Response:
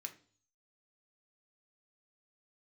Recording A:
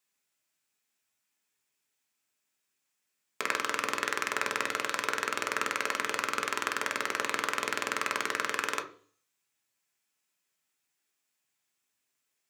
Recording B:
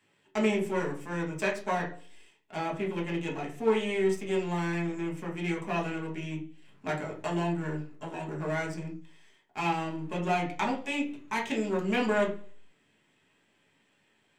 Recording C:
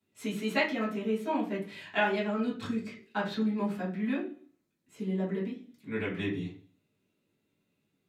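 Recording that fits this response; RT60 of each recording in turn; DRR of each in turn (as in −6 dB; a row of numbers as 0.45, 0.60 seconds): A; 0.45, 0.45, 0.45 seconds; 5.0, −2.0, −8.5 decibels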